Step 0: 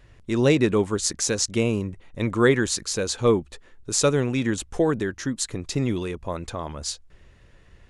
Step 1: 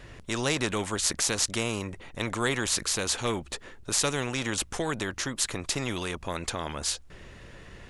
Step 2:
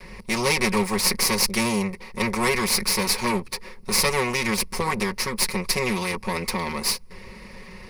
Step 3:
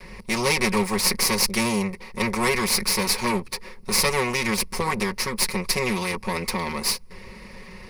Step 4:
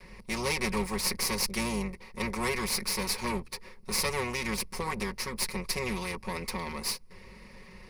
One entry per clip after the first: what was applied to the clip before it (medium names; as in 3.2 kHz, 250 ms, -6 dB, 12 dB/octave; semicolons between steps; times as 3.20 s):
spectrum-flattening compressor 2:1; trim -2.5 dB
comb filter that takes the minimum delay 5.4 ms; rippled EQ curve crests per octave 0.88, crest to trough 12 dB; trim +5.5 dB
no audible change
octave divider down 2 oct, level -6 dB; trim -8.5 dB